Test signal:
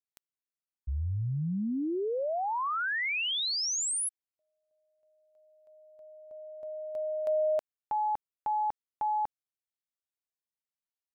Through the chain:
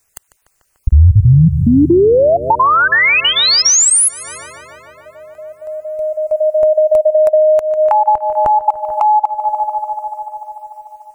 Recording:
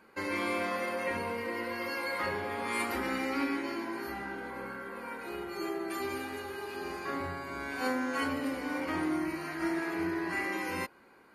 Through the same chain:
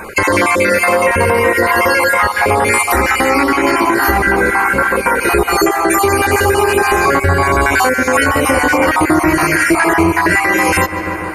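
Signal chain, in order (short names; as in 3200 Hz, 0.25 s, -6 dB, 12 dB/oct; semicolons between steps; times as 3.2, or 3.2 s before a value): random spectral dropouts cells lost 30%; ten-band EQ 125 Hz -4 dB, 250 Hz -11 dB, 4000 Hz -8 dB, 8000 Hz +6 dB; darkening echo 0.147 s, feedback 80%, low-pass 4500 Hz, level -18 dB; compressor 20:1, threshold -42 dBFS; low shelf 190 Hz +8.5 dB; notch 3300 Hz, Q 15; maximiser +34.5 dB; gain -1 dB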